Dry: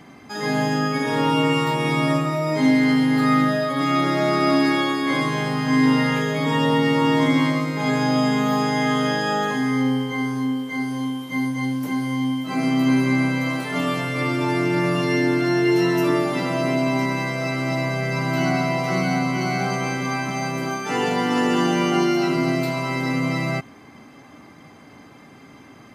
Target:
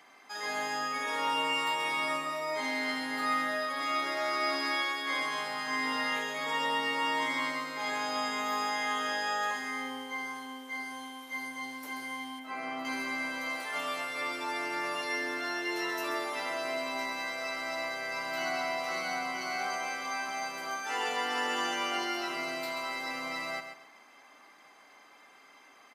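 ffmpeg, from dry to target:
-filter_complex "[0:a]highpass=750,aecho=1:1:134|268|402:0.355|0.0923|0.024,asettb=1/sr,asplit=3[a][b][c];[a]atrim=end=12.394[d];[b]atrim=start=12.39:end=12.85,asetpts=PTS-STARTPTS,afade=t=in:d=0.004:c=qsin,afade=t=out:st=0.456:d=0.004:c=qsin,acrossover=split=2700[e][f];[f]acompressor=threshold=-51dB:ratio=4:attack=1:release=60[g];[e][g]amix=inputs=2:normalize=0[h];[c]atrim=start=12.846[i];[d][h]acrossfade=d=0.004:c1=hsin:c2=qsin[j];[j][i]acrossfade=d=0.004:c1=qsin:c2=hsin,volume=-6.5dB"

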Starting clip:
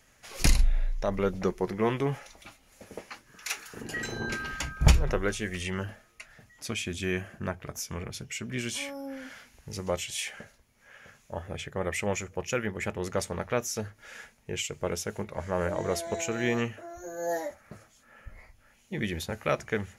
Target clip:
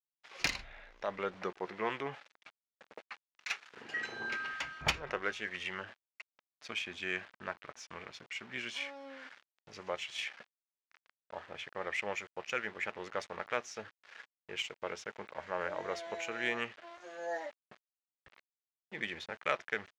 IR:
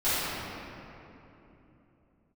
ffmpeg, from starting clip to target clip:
-af "aeval=exprs='val(0)*gte(abs(val(0)),0.0075)':c=same,bandpass=f=3.8k:t=q:w=0.52:csg=0,adynamicsmooth=sensitivity=1:basefreq=2.4k,volume=3.5dB"

